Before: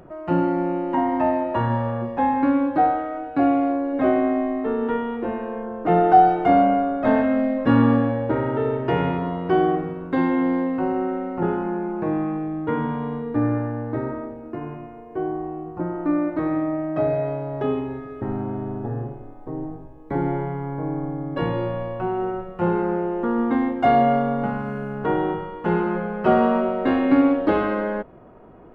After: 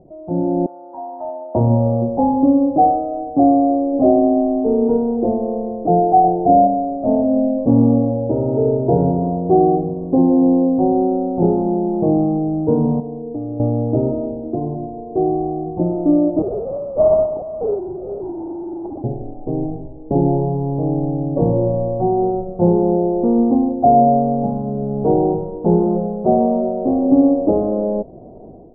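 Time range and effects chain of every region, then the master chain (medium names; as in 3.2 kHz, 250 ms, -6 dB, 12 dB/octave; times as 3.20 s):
0.66–1.55 s: high-pass 1.4 kHz + treble shelf 2.5 kHz +10 dB + overload inside the chain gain 22.5 dB
6.24–6.67 s: low-pass 2 kHz + tilt shelf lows +3.5 dB, about 1.5 kHz + doubling 34 ms -11 dB
13.00–13.60 s: feedback comb 320 Hz, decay 0.17 s, mix 80% + compression 3:1, threshold -32 dBFS + small resonant body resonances 450/710/2600 Hz, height 8 dB, ringing for 95 ms
16.42–19.04 s: formants replaced by sine waves + tilt EQ +4 dB/octave + sample-rate reducer 1.8 kHz, jitter 20%
whole clip: elliptic low-pass 730 Hz, stop band 70 dB; dynamic bell 320 Hz, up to -3 dB, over -37 dBFS, Q 3.6; level rider gain up to 12 dB; trim -1 dB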